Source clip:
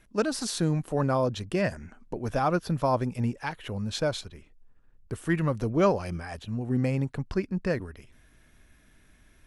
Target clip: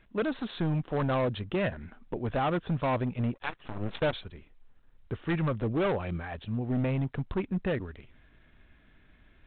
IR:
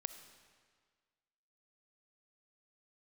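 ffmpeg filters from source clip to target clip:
-filter_complex "[0:a]volume=15.8,asoftclip=hard,volume=0.0631,asettb=1/sr,asplit=3[s0][s1][s2];[s0]atrim=end=3.344[s3];[s1]atrim=start=3.34:end=4.13,asetpts=PTS-STARTPTS,afade=t=in:d=0.004:c=qsin,afade=t=out:st=0.786:d=0.004:c=qsin,aeval=exprs='0.0631*(cos(1*acos(clip(val(0)/0.0631,-1,1)))-cos(1*PI/2))+0.0251*(cos(3*acos(clip(val(0)/0.0631,-1,1)))-cos(3*PI/2))+0.00562*(cos(4*acos(clip(val(0)/0.0631,-1,1)))-cos(4*PI/2))+0.00447*(cos(8*acos(clip(val(0)/0.0631,-1,1)))-cos(8*PI/2))':c=same[s4];[s2]atrim=start=4.126[s5];[s3][s4]acrossfade=d=0.004:c1=hsin:c2=qsin[s6];[s6][s5]acrossfade=d=0.004:c1=qsin:c2=hsin" -ar 8000 -c:a adpcm_g726 -b:a 32k

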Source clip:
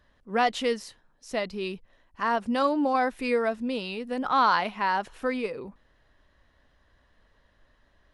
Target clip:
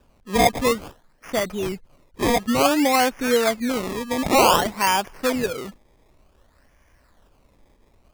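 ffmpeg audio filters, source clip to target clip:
-af "acrusher=samples=21:mix=1:aa=0.000001:lfo=1:lforange=21:lforate=0.55,volume=2"

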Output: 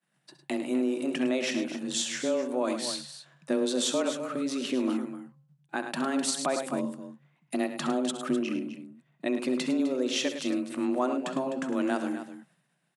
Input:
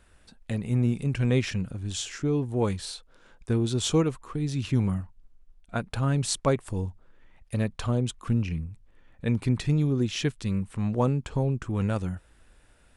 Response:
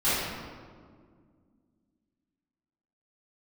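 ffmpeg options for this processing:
-filter_complex "[0:a]lowshelf=f=130:g=-9,asplit=2[s0][s1];[s1]acompressor=threshold=0.0126:ratio=6,volume=0.944[s2];[s0][s2]amix=inputs=2:normalize=0,agate=range=0.0224:threshold=0.00631:ratio=3:detection=peak,aecho=1:1:66|105|255:0.211|0.282|0.251,alimiter=limit=0.141:level=0:latency=1:release=82,afreqshift=130,equalizer=f=430:w=5.6:g=-9,bandreject=f=265.2:t=h:w=4,bandreject=f=530.4:t=h:w=4,bandreject=f=795.6:t=h:w=4,bandreject=f=1060.8:t=h:w=4,bandreject=f=1326:t=h:w=4"

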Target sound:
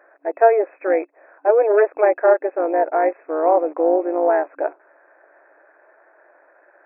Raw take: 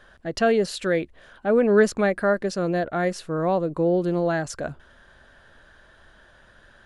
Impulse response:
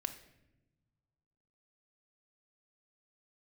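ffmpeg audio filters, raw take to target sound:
-filter_complex "[0:a]asplit=2[s0][s1];[s1]acrusher=bits=5:mix=0:aa=0.000001,volume=0.251[s2];[s0][s2]amix=inputs=2:normalize=0,asoftclip=type=tanh:threshold=0.501,equalizer=f=670:t=o:w=1.1:g=12,tremolo=f=230:d=0.571,afftfilt=real='re*between(b*sr/4096,280,2600)':imag='im*between(b*sr/4096,280,2600)':win_size=4096:overlap=0.75,volume=0.891"

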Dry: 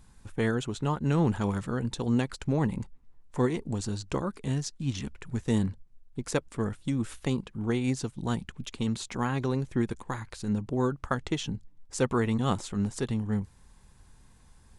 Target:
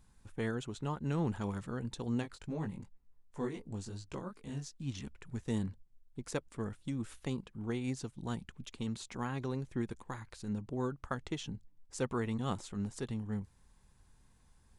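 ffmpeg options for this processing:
-filter_complex "[0:a]asplit=3[s0][s1][s2];[s0]afade=t=out:st=2.22:d=0.02[s3];[s1]flanger=delay=18:depth=3.9:speed=2.7,afade=t=in:st=2.22:d=0.02,afade=t=out:st=4.77:d=0.02[s4];[s2]afade=t=in:st=4.77:d=0.02[s5];[s3][s4][s5]amix=inputs=3:normalize=0,volume=0.376"

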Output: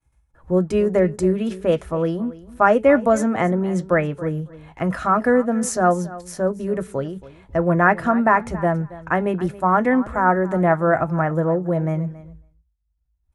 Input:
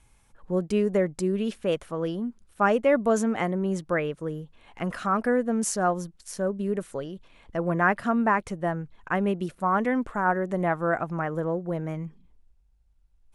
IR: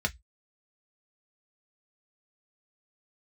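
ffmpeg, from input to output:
-filter_complex "[0:a]bandreject=f=432.5:t=h:w=4,bandreject=f=865:t=h:w=4,asplit=2[s0][s1];[s1]aecho=0:1:276|552:0.126|0.0189[s2];[s0][s2]amix=inputs=2:normalize=0,agate=range=0.0224:threshold=0.00398:ratio=3:detection=peak,asplit=2[s3][s4];[1:a]atrim=start_sample=2205,lowshelf=f=110:g=11.5[s5];[s4][s5]afir=irnorm=-1:irlink=0,volume=0.266[s6];[s3][s6]amix=inputs=2:normalize=0,volume=1.68"

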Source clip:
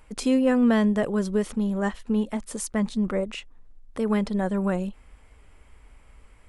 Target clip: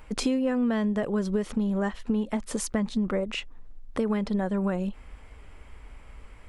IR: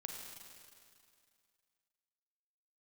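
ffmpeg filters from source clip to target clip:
-af "equalizer=f=10000:t=o:w=1.1:g=-7,acompressor=threshold=0.0355:ratio=6,volume=1.88"

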